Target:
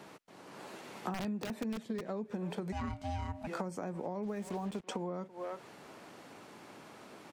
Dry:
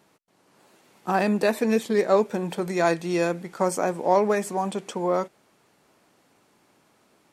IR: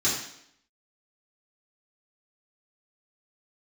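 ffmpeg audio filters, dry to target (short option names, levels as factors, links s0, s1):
-filter_complex "[0:a]asettb=1/sr,asplit=3[s0][s1][s2];[s0]atrim=end=1.144[s3];[s1]atrim=start=1.14:end=2.1,asetpts=PTS-STARTPTS,afade=t=in:d=0.004:c=qsin,afade=t=out:st=0.956:d=0.004:c=qsin,aeval=exprs='(mod(4.47*val(0)+1,2)-1)/4.47':c=same[s4];[s2]atrim=start=2.096[s5];[s3][s4]acrossfade=d=0.004:c1=hsin:c2=qsin[s6];[s6][s5]acrossfade=d=0.004:c1=qsin:c2=hsin,asplit=3[s7][s8][s9];[s7]afade=t=out:st=4.22:d=0.02[s10];[s8]acrusher=bits=5:mix=0:aa=0.5,afade=t=in:st=4.22:d=0.02,afade=t=out:st=4.87:d=0.02[s11];[s9]afade=t=in:st=4.87:d=0.02[s12];[s10][s11][s12]amix=inputs=3:normalize=0,highshelf=f=6200:g=-9.5,asplit=2[s13][s14];[s14]adelay=330,highpass=300,lowpass=3400,asoftclip=type=hard:threshold=0.141,volume=0.0891[s15];[s13][s15]amix=inputs=2:normalize=0,asettb=1/sr,asplit=3[s16][s17][s18];[s16]atrim=end=2.724[s19];[s17]atrim=start=2.72:end=3.47,asetpts=PTS-STARTPTS,afade=t=in:d=0.004:c=qsin,afade=t=out:st=0.746:d=0.004:c=qsin,aeval=exprs='val(0)*sin(2*PI*440*n/s)':c=same[s20];[s18]atrim=start=3.466[s21];[s19][s20]acrossfade=d=0.004:c1=hsin:c2=qsin[s22];[s22][s21]acrossfade=d=0.004:c1=qsin:c2=hsin,acrossover=split=220[s23][s24];[s24]acompressor=threshold=0.0178:ratio=10[s25];[s23][s25]amix=inputs=2:normalize=0,lowshelf=f=67:g=-9.5,acompressor=threshold=0.00447:ratio=6,volume=3.35"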